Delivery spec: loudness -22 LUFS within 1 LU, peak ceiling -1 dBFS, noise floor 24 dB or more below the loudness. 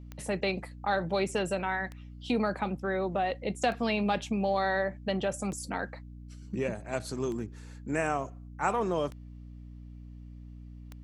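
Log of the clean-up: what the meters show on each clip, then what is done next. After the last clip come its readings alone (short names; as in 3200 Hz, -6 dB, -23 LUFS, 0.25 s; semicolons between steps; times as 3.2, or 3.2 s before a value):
clicks 7; hum 60 Hz; harmonics up to 300 Hz; hum level -44 dBFS; loudness -31.5 LUFS; peak -14.0 dBFS; loudness target -22.0 LUFS
-> de-click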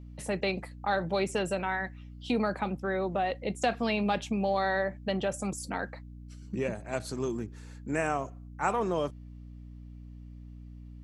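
clicks 0; hum 60 Hz; harmonics up to 300 Hz; hum level -44 dBFS
-> de-hum 60 Hz, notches 5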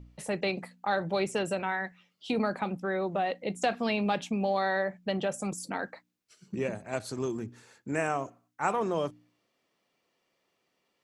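hum none; loudness -31.5 LUFS; peak -14.0 dBFS; loudness target -22.0 LUFS
-> gain +9.5 dB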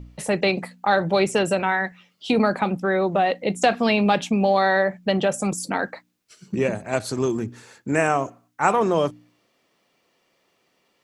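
loudness -22.0 LUFS; peak -4.5 dBFS; noise floor -68 dBFS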